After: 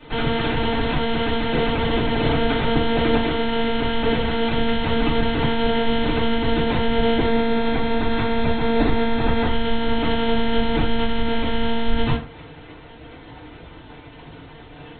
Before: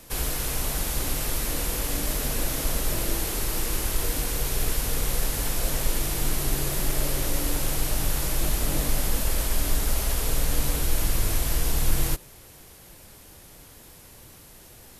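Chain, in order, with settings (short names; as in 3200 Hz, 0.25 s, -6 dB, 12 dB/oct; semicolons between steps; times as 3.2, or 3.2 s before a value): monotone LPC vocoder at 8 kHz 230 Hz; 7.23–9.47 notch 3000 Hz, Q 8.2; FDN reverb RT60 0.37 s, low-frequency decay 0.95×, high-frequency decay 0.65×, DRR -10 dB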